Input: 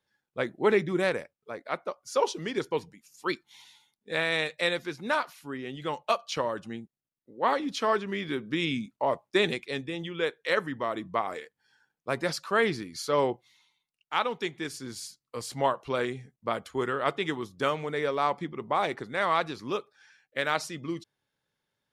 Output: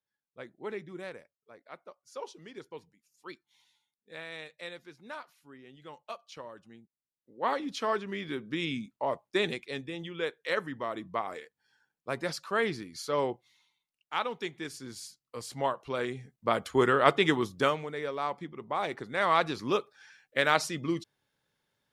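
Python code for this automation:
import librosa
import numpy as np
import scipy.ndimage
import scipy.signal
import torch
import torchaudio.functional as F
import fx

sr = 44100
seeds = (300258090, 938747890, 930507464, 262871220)

y = fx.gain(x, sr, db=fx.line((6.76, -15.0), (7.46, -4.0), (15.95, -4.0), (16.75, 5.5), (17.51, 5.5), (17.91, -6.0), (18.66, -6.0), (19.55, 3.0)))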